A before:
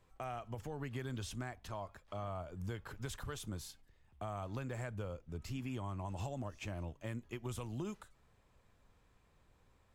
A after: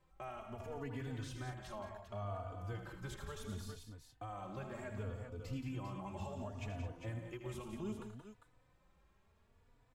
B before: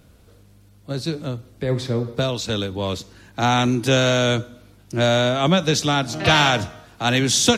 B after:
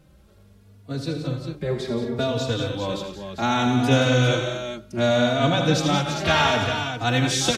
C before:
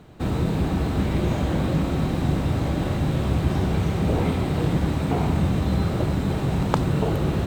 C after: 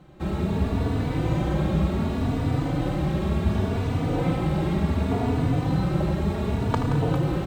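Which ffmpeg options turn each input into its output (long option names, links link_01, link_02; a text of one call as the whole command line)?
ffmpeg -i in.wav -filter_complex "[0:a]highshelf=frequency=4200:gain=-5.5,asplit=2[link_01][link_02];[link_02]aecho=0:1:79|111|175|213|400:0.355|0.2|0.376|0.224|0.398[link_03];[link_01][link_03]amix=inputs=2:normalize=0,asplit=2[link_04][link_05];[link_05]adelay=3.4,afreqshift=0.68[link_06];[link_04][link_06]amix=inputs=2:normalize=1" out.wav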